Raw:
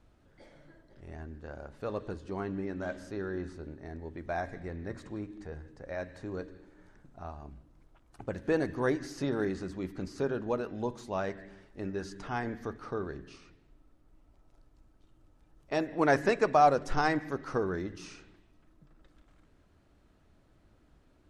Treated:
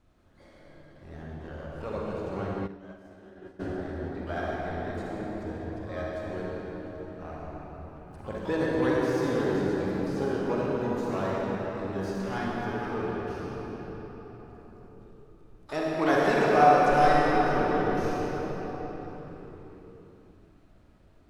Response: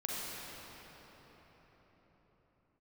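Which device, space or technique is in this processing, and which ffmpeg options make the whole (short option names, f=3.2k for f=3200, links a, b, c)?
shimmer-style reverb: -filter_complex "[0:a]asplit=2[a][b];[b]asetrate=88200,aresample=44100,atempo=0.5,volume=-12dB[c];[a][c]amix=inputs=2:normalize=0[d];[1:a]atrim=start_sample=2205[e];[d][e]afir=irnorm=-1:irlink=0,asplit=3[f][g][h];[f]afade=t=out:st=2.66:d=0.02[i];[g]agate=range=-33dB:threshold=-19dB:ratio=3:detection=peak,afade=t=in:st=2.66:d=0.02,afade=t=out:st=3.59:d=0.02[j];[h]afade=t=in:st=3.59:d=0.02[k];[i][j][k]amix=inputs=3:normalize=0"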